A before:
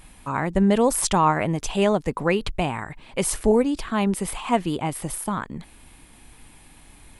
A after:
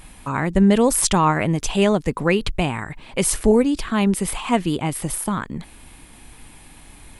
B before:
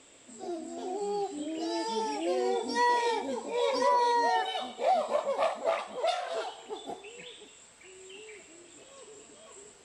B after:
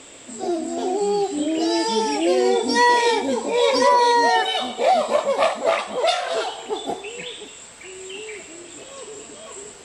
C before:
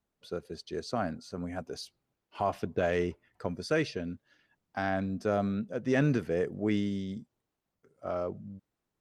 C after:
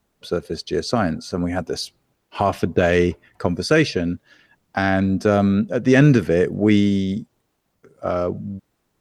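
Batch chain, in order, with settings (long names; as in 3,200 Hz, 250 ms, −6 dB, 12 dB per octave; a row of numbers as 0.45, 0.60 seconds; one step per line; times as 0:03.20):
dynamic equaliser 780 Hz, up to −5 dB, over −37 dBFS, Q 0.92
loudness normalisation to −20 LKFS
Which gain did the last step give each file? +4.5, +13.5, +14.5 decibels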